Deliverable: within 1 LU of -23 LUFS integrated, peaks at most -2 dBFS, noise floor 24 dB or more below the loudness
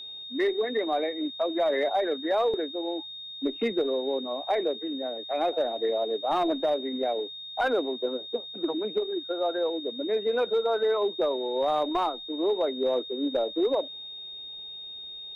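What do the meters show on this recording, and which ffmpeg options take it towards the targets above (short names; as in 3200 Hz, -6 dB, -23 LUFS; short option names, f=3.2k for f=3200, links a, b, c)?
steady tone 3700 Hz; tone level -38 dBFS; loudness -28.5 LUFS; peak -18.0 dBFS; loudness target -23.0 LUFS
-> -af "bandreject=f=3.7k:w=30"
-af "volume=5.5dB"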